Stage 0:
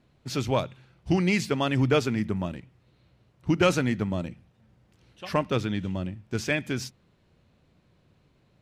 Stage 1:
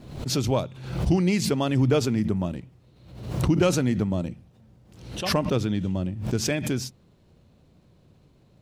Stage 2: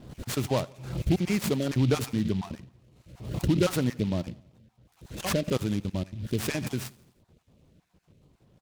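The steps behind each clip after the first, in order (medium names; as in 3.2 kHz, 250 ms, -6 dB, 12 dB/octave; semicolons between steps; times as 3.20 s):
in parallel at 0 dB: compression, threshold -31 dBFS, peak gain reduction 14.5 dB; on the sum: peaking EQ 1.9 kHz -8 dB 1.9 oct; swell ahead of each attack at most 71 dB/s
random holes in the spectrogram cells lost 32%; feedback delay 84 ms, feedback 55%, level -23 dB; delay time shaken by noise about 3 kHz, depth 0.053 ms; trim -2.5 dB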